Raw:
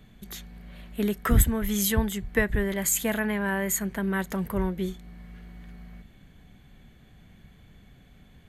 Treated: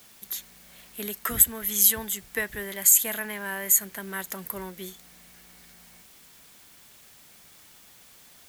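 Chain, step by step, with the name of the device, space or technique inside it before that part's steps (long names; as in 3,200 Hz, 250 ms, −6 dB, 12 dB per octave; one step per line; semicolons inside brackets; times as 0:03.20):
turntable without a phono preamp (RIAA equalisation recording; white noise bed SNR 24 dB)
level −4.5 dB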